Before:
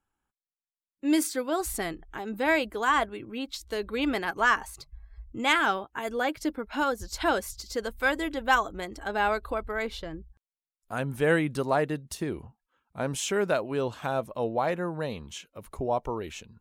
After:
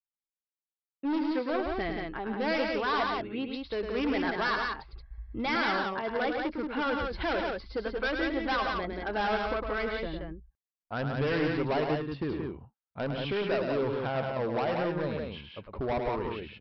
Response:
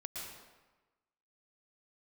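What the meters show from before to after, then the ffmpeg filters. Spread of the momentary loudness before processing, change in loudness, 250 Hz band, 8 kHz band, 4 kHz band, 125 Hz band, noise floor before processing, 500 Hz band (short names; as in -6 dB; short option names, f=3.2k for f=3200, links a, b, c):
13 LU, -2.5 dB, -1.0 dB, under -25 dB, -2.5 dB, 0.0 dB, under -85 dBFS, -1.0 dB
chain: -af "agate=range=-33dB:threshold=-45dB:ratio=3:detection=peak,lowpass=2.8k,aresample=11025,asoftclip=type=hard:threshold=-27dB,aresample=44100,aecho=1:1:105|177.8:0.501|0.631"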